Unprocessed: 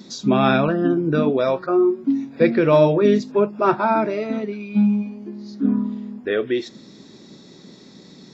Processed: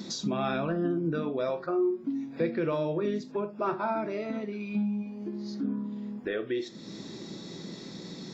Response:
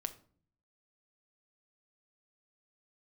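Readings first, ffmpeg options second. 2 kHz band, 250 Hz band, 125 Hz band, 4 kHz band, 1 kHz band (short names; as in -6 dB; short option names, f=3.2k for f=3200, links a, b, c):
-11.5 dB, -11.0 dB, -11.0 dB, -7.5 dB, -12.0 dB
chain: -filter_complex "[0:a]acompressor=threshold=-38dB:ratio=2.5[a];[1:a]atrim=start_sample=2205,atrim=end_sample=3969[b];[a][b]afir=irnorm=-1:irlink=0,volume=4dB"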